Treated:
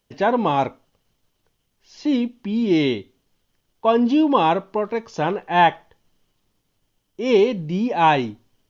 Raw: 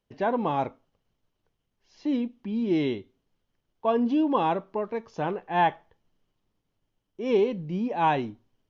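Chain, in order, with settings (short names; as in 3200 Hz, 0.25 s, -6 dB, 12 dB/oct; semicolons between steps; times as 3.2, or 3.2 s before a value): high shelf 2900 Hz +9 dB; gain +6.5 dB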